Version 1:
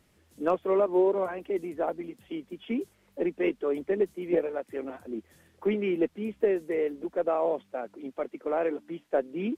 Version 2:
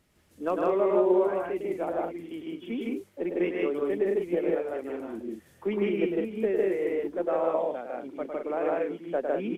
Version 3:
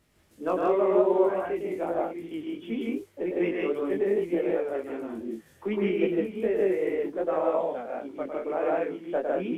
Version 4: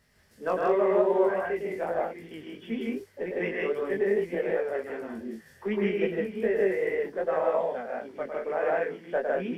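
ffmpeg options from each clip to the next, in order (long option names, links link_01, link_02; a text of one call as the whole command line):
ffmpeg -i in.wav -af "aecho=1:1:105|154.5|195.3:0.562|1|0.501,volume=-3dB" out.wav
ffmpeg -i in.wav -af "flanger=delay=17.5:depth=4.4:speed=2.6,volume=4dB" out.wav
ffmpeg -i in.wav -af "superequalizer=6b=0.355:11b=2.24:14b=1.78" out.wav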